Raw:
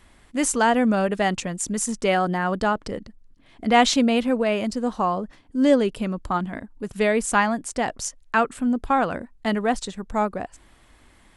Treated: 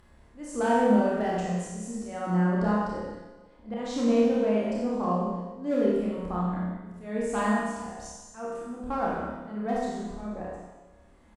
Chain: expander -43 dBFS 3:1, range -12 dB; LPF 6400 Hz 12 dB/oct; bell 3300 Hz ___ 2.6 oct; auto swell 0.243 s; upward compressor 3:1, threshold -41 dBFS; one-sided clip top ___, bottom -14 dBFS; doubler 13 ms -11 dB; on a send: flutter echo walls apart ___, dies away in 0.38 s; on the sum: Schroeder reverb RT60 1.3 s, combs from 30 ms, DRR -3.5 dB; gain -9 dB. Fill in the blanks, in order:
-11.5 dB, -17.5 dBFS, 4.8 m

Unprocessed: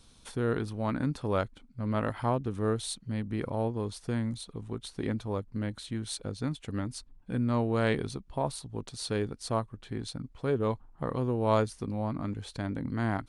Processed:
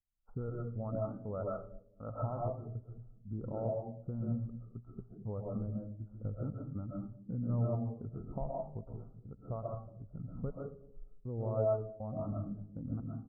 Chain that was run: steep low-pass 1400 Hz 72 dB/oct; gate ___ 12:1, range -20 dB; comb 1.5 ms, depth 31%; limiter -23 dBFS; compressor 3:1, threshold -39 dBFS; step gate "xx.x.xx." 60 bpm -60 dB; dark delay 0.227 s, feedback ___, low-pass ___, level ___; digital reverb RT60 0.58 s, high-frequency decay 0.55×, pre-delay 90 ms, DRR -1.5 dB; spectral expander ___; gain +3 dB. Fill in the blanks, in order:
-51 dBFS, 36%, 580 Hz, -12 dB, 1.5:1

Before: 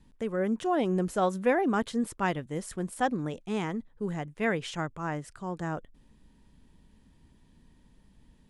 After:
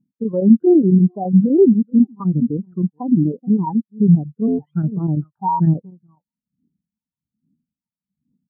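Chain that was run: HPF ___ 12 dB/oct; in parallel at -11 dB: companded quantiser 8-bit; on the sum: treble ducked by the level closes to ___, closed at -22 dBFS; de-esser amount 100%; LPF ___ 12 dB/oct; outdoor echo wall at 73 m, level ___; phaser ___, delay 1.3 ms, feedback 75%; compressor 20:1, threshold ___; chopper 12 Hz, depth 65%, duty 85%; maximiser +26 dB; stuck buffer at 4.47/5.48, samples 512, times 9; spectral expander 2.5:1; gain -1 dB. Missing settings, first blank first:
170 Hz, 440 Hz, 1200 Hz, -16 dB, 1.2 Hz, -27 dBFS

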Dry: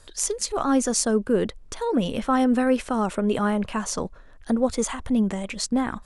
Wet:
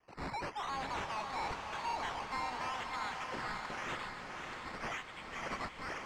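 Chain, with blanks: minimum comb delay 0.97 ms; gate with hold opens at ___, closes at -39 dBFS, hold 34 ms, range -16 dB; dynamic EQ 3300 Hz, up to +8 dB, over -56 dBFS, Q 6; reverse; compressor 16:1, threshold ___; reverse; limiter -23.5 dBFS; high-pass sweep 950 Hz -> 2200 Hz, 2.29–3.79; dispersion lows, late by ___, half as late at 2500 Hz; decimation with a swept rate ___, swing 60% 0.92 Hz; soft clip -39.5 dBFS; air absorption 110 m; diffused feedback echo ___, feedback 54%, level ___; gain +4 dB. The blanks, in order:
-36 dBFS, -33 dBFS, 40 ms, 11×, 0.584 s, -3.5 dB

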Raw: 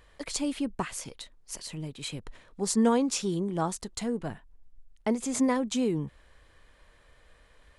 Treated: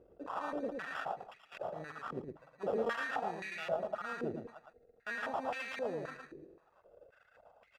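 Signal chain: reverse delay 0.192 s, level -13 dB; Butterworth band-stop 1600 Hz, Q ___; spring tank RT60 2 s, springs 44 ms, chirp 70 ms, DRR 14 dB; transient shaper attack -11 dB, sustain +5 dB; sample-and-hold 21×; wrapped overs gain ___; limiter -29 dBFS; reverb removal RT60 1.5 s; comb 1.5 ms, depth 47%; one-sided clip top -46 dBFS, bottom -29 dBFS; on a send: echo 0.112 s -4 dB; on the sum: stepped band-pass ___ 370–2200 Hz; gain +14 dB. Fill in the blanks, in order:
0.52, 19 dB, 3.8 Hz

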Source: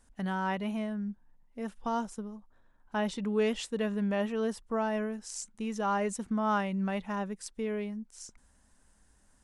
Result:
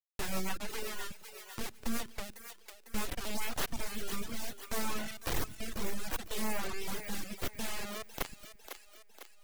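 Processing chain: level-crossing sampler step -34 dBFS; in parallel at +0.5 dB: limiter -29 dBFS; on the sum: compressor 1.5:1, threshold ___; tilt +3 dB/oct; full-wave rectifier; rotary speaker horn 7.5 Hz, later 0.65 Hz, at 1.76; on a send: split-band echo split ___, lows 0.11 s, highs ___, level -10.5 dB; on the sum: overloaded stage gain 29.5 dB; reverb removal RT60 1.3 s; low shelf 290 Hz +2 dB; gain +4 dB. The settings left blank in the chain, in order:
-37 dBFS, 320 Hz, 0.501 s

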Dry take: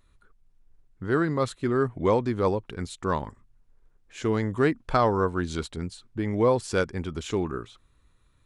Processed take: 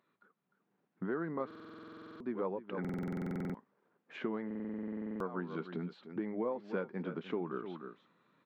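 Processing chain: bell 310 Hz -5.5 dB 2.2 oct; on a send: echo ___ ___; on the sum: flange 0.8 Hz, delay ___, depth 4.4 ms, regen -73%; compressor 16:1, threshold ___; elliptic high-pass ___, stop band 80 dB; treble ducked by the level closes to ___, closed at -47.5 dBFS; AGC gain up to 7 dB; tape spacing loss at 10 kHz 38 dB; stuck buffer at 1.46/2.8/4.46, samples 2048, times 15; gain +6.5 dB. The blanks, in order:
0.301 s, -16.5 dB, 1.8 ms, -43 dBFS, 180 Hz, 2700 Hz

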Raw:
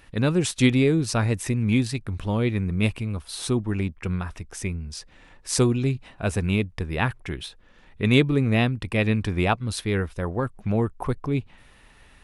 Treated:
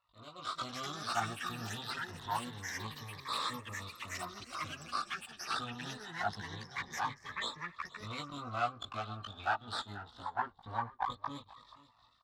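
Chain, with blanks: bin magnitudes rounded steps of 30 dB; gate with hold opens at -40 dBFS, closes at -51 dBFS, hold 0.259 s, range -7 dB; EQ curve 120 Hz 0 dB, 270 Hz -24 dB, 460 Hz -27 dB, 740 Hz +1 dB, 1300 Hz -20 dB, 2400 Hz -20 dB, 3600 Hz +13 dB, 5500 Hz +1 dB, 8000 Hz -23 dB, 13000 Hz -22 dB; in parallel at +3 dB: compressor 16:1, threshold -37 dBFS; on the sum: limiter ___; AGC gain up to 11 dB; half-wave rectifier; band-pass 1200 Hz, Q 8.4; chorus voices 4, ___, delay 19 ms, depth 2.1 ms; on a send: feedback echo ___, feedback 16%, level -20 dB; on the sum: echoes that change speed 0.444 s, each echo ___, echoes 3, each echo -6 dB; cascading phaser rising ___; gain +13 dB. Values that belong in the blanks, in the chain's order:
-14.5 dBFS, 0.61 Hz, 0.483 s, +7 st, 0.25 Hz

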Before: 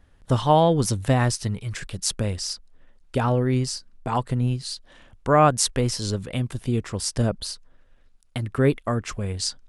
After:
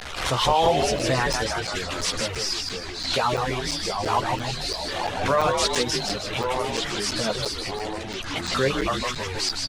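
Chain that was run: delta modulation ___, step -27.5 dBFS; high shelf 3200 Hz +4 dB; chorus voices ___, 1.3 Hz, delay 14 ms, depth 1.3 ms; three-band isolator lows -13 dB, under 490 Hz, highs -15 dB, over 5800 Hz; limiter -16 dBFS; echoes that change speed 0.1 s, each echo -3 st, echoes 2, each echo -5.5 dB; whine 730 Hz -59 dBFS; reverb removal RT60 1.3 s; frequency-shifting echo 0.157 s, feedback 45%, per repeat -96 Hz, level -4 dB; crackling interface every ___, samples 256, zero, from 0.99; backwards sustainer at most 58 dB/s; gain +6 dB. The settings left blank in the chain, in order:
64 kbps, 2, 0.34 s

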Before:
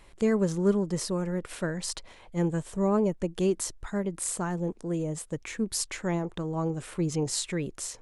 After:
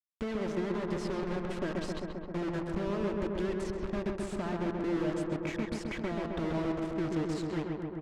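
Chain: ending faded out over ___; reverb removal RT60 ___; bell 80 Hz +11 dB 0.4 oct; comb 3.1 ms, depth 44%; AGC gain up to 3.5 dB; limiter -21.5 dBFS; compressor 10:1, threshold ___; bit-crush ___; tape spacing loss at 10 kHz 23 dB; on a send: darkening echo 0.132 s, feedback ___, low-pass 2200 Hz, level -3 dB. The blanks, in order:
1.29 s, 1.1 s, -31 dBFS, 6-bit, 82%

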